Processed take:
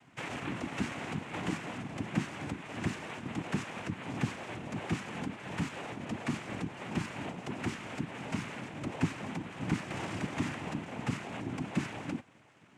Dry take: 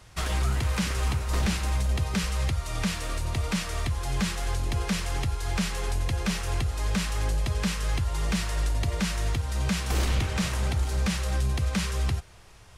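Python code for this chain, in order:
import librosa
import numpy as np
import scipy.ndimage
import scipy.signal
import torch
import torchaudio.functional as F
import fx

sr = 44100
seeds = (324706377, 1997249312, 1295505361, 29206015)

y = scipy.signal.sosfilt(scipy.signal.butter(4, 2500.0, 'lowpass', fs=sr, output='sos'), x)
y = fx.noise_vocoder(y, sr, seeds[0], bands=4)
y = y * 10.0 ** (-4.5 / 20.0)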